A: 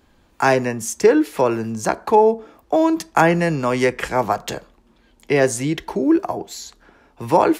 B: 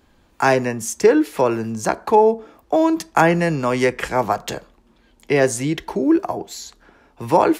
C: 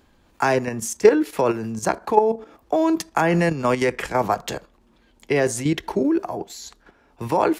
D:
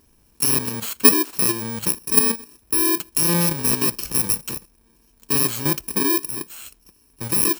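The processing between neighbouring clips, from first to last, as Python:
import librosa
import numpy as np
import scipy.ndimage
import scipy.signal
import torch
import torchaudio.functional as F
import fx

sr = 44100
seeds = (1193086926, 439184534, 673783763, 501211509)

y1 = x
y2 = fx.level_steps(y1, sr, step_db=10)
y2 = y2 * 10.0 ** (2.0 / 20.0)
y3 = fx.bit_reversed(y2, sr, seeds[0], block=64)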